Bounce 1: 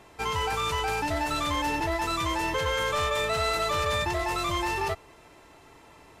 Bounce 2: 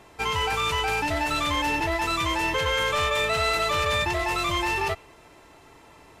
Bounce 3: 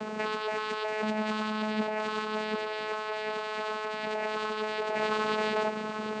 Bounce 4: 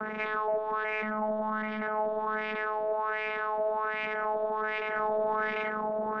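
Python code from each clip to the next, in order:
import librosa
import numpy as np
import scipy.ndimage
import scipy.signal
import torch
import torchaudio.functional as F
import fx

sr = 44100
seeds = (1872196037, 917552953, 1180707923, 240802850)

y1 = fx.dynamic_eq(x, sr, hz=2600.0, q=1.5, threshold_db=-47.0, ratio=4.0, max_db=5)
y1 = F.gain(torch.from_numpy(y1), 1.5).numpy()
y2 = fx.echo_feedback(y1, sr, ms=745, feedback_pct=31, wet_db=-18.5)
y2 = fx.over_compress(y2, sr, threshold_db=-36.0, ratio=-1.0)
y2 = fx.vocoder(y2, sr, bands=8, carrier='saw', carrier_hz=215.0)
y2 = F.gain(torch.from_numpy(y2), 5.5).numpy()
y3 = 10.0 ** (-32.0 / 20.0) * np.tanh(y2 / 10.0 ** (-32.0 / 20.0))
y3 = fx.filter_lfo_lowpass(y3, sr, shape='sine', hz=1.3, low_hz=660.0, high_hz=2400.0, q=5.0)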